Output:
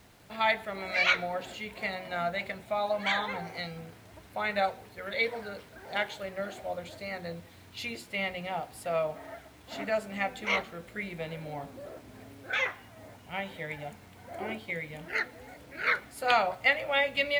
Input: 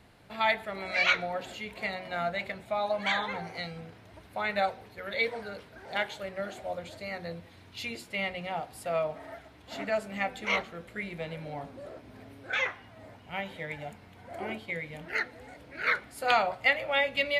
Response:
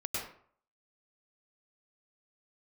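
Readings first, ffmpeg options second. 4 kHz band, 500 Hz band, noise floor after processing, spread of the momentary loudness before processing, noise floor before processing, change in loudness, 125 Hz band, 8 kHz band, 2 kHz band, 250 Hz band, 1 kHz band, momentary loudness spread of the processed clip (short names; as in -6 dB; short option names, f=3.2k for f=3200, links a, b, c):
0.0 dB, 0.0 dB, -54 dBFS, 19 LU, -54 dBFS, 0.0 dB, 0.0 dB, +0.5 dB, 0.0 dB, 0.0 dB, 0.0 dB, 19 LU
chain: -af "acrusher=bits=9:mix=0:aa=0.000001"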